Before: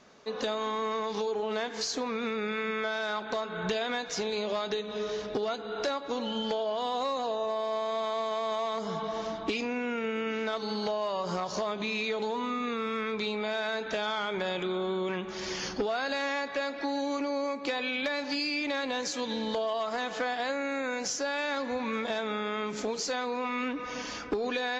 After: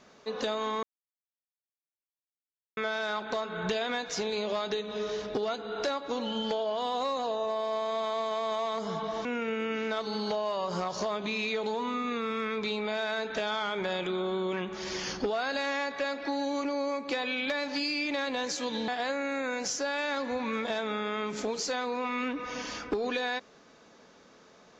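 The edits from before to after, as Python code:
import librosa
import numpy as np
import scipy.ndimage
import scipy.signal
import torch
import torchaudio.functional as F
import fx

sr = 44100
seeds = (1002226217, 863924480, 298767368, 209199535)

y = fx.edit(x, sr, fx.silence(start_s=0.83, length_s=1.94),
    fx.cut(start_s=9.25, length_s=0.56),
    fx.cut(start_s=19.44, length_s=0.84), tone=tone)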